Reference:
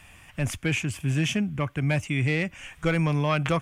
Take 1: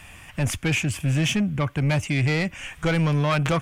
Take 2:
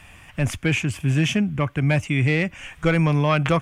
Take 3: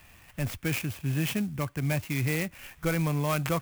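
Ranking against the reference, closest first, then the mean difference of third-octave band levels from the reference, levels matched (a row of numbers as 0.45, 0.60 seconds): 2, 1, 3; 1.0, 2.5, 4.5 decibels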